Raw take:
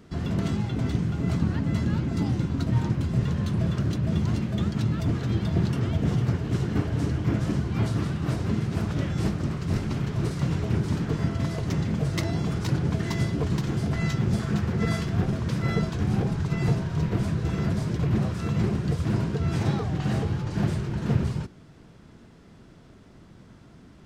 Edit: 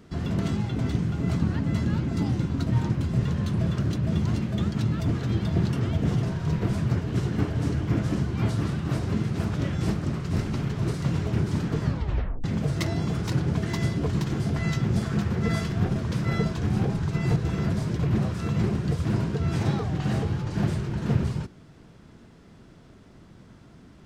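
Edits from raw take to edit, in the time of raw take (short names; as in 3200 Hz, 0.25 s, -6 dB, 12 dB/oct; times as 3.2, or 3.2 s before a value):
11.19 tape stop 0.62 s
16.73–17.36 move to 6.23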